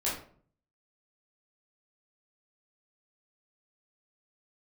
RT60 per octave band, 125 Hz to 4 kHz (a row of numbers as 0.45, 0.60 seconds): 0.75, 0.65, 0.55, 0.45, 0.40, 0.30 seconds